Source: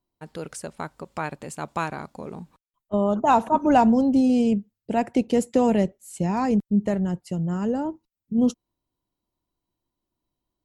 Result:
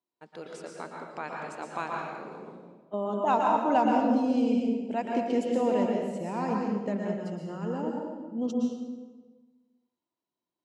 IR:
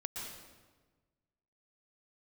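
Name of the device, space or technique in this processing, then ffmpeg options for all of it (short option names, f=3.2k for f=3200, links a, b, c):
supermarket ceiling speaker: -filter_complex "[0:a]highpass=270,lowpass=5.5k[a];[1:a]atrim=start_sample=2205[b];[a][b]afir=irnorm=-1:irlink=0,volume=-4dB"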